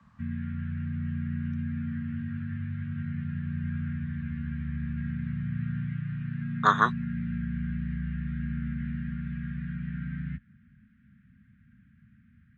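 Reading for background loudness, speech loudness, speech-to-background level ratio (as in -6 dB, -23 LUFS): -34.0 LUFS, -25.0 LUFS, 9.0 dB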